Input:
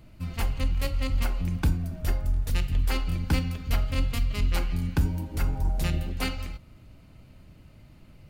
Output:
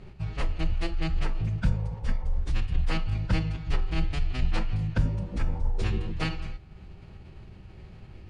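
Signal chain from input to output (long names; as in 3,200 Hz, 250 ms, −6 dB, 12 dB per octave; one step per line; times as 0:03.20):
healed spectral selection 0:01.66–0:02.35, 470–960 Hz before
in parallel at +2.5 dB: downward compressor 20 to 1, threshold −45 dBFS, peak gain reduction 27.5 dB
on the sum: phase-vocoder pitch shift with formants kept −8.5 semitones
high-frequency loss of the air 95 metres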